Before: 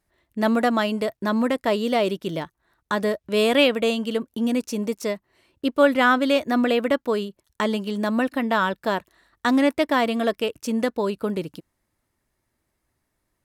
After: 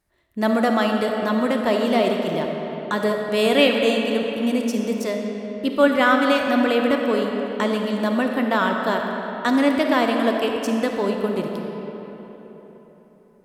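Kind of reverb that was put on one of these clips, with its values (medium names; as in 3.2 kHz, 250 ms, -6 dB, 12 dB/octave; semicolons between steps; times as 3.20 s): algorithmic reverb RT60 4.1 s, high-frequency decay 0.6×, pre-delay 10 ms, DRR 2 dB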